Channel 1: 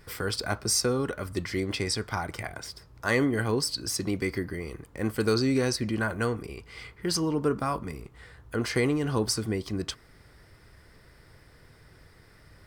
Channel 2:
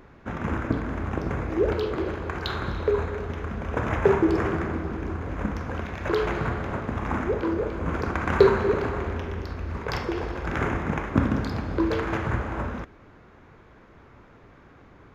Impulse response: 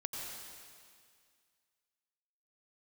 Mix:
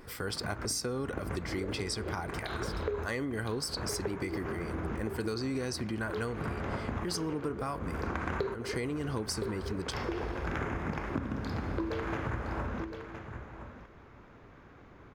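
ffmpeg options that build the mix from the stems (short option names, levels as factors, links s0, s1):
-filter_complex "[0:a]volume=0.631,asplit=2[s0][s1];[1:a]volume=0.708,asplit=2[s2][s3];[s3]volume=0.2[s4];[s1]apad=whole_len=667883[s5];[s2][s5]sidechaincompress=threshold=0.00562:ratio=8:attack=26:release=108[s6];[s4]aecho=0:1:1015:1[s7];[s0][s6][s7]amix=inputs=3:normalize=0,acompressor=threshold=0.0316:ratio=10"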